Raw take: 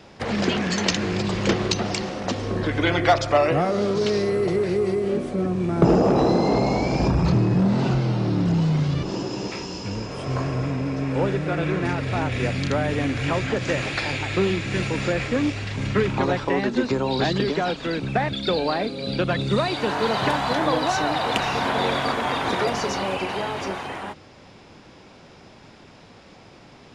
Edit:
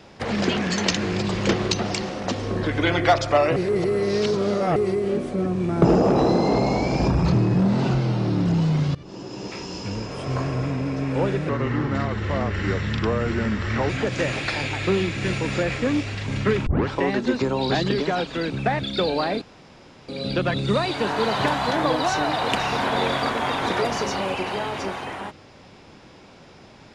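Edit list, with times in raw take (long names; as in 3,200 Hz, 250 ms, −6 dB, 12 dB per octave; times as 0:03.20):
0:03.56–0:04.76: reverse
0:08.95–0:09.78: fade in, from −19.5 dB
0:11.49–0:13.39: play speed 79%
0:16.16: tape start 0.25 s
0:18.91: splice in room tone 0.67 s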